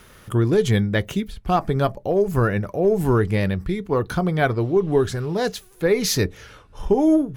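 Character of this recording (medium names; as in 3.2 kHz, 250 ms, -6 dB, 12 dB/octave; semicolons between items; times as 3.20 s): noise floor -49 dBFS; spectral tilt -6.0 dB/octave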